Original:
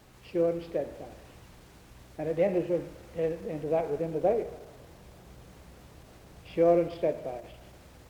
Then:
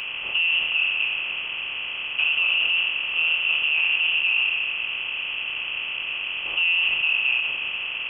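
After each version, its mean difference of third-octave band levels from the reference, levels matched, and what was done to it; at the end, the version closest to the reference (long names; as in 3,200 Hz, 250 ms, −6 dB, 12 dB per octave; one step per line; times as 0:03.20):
13.5 dB: compressor on every frequency bin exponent 0.4
in parallel at 0 dB: compressor whose output falls as the input rises −24 dBFS, ratio −0.5
on the sum: voice inversion scrambler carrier 3,200 Hz
level −3.5 dB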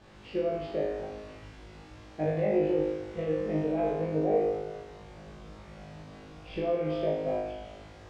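5.5 dB: brickwall limiter −24.5 dBFS, peak gain reduction 11 dB
high-frequency loss of the air 110 metres
flutter between parallel walls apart 3.3 metres, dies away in 0.9 s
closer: second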